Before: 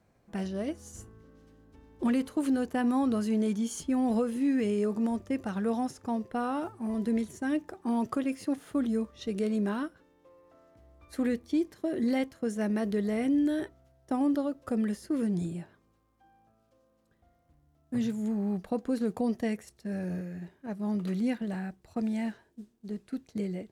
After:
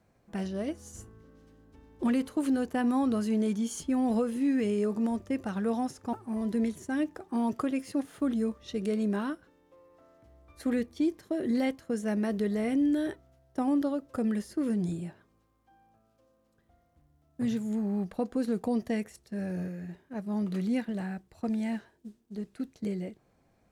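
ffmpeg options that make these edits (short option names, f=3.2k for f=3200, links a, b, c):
-filter_complex "[0:a]asplit=2[a][b];[a]atrim=end=6.132[c];[b]atrim=start=6.658[d];[c][d]acrossfade=d=0.004:c1=hsin:c2=hsin"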